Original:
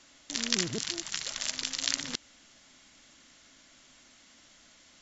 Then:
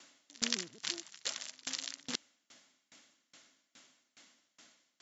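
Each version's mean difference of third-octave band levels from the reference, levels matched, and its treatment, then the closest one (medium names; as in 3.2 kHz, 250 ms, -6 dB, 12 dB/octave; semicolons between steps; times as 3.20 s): 6.5 dB: high-pass 190 Hz 12 dB/octave; sawtooth tremolo in dB decaying 2.4 Hz, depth 29 dB; trim +2 dB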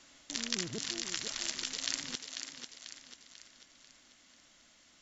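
3.0 dB: gain riding 0.5 s; on a send: thinning echo 492 ms, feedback 47%, high-pass 230 Hz, level -7 dB; on the sum: trim -4.5 dB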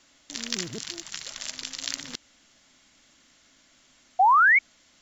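10.0 dB: short-mantissa float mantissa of 4-bit; painted sound rise, 4.19–4.59 s, 710–2300 Hz -15 dBFS; trim -2 dB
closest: second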